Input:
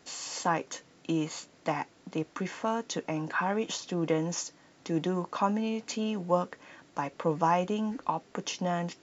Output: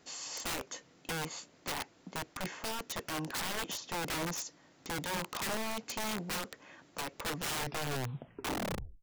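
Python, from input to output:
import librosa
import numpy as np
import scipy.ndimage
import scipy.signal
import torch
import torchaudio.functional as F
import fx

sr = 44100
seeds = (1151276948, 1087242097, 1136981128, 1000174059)

y = fx.tape_stop_end(x, sr, length_s=1.68)
y = (np.mod(10.0 ** (27.0 / 20.0) * y + 1.0, 2.0) - 1.0) / 10.0 ** (27.0 / 20.0)
y = y * 10.0 ** (-3.5 / 20.0)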